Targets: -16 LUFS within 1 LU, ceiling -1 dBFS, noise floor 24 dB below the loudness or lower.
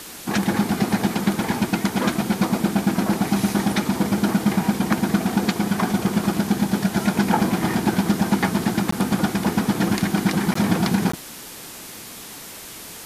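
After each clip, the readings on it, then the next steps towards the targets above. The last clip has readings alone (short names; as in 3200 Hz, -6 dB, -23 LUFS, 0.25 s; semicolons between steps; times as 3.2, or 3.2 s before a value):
dropouts 3; longest dropout 14 ms; noise floor -38 dBFS; noise floor target -46 dBFS; loudness -21.5 LUFS; peak -4.0 dBFS; loudness target -16.0 LUFS
-> interpolate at 8.91/10.54/11.12, 14 ms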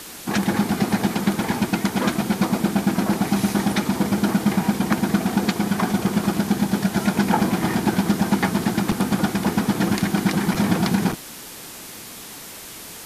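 dropouts 0; noise floor -38 dBFS; noise floor target -46 dBFS
-> denoiser 8 dB, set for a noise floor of -38 dBFS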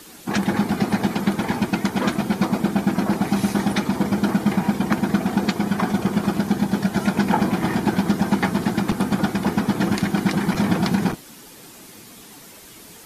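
noise floor -44 dBFS; noise floor target -46 dBFS
-> denoiser 6 dB, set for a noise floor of -44 dBFS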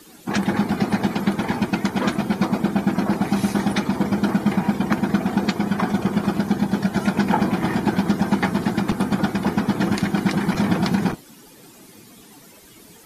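noise floor -47 dBFS; loudness -21.5 LUFS; peak -4.0 dBFS; loudness target -16.0 LUFS
-> gain +5.5 dB; limiter -1 dBFS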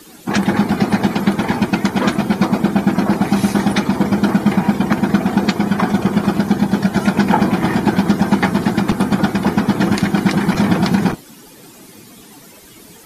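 loudness -16.0 LUFS; peak -1.0 dBFS; noise floor -42 dBFS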